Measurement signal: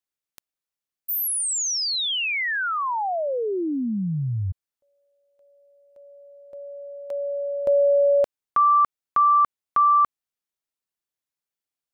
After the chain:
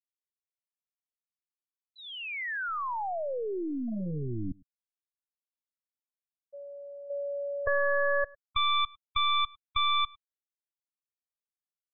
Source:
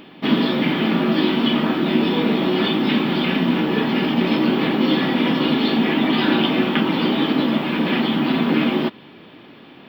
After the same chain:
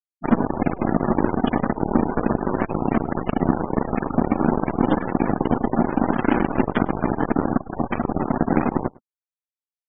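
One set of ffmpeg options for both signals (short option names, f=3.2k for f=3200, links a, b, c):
-filter_complex "[0:a]lowpass=1.7k,lowshelf=f=93:g=9,aeval=exprs='0.631*(cos(1*acos(clip(val(0)/0.631,-1,1)))-cos(1*PI/2))+0.112*(cos(2*acos(clip(val(0)/0.631,-1,1)))-cos(2*PI/2))+0.0126*(cos(6*acos(clip(val(0)/0.631,-1,1)))-cos(6*PI/2))+0.126*(cos(7*acos(clip(val(0)/0.631,-1,1)))-cos(7*PI/2))':c=same,asplit=2[a][b];[b]acompressor=threshold=-33dB:ratio=6:attack=4.8:release=275:knee=6:detection=peak,volume=1.5dB[c];[a][c]amix=inputs=2:normalize=0,afftfilt=real='re*gte(hypot(re,im),0.1)':imag='im*gte(hypot(re,im),0.1)':win_size=1024:overlap=0.75,asplit=2[d][e];[e]adelay=105,volume=-25dB,highshelf=f=4k:g=-2.36[f];[d][f]amix=inputs=2:normalize=0,volume=-2dB"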